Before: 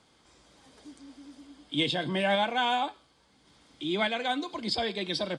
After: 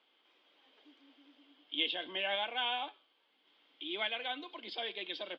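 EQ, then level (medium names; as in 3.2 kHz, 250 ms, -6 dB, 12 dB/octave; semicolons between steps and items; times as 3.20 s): high-pass 300 Hz 24 dB/octave; four-pole ladder low-pass 3.3 kHz, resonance 65%; 0.0 dB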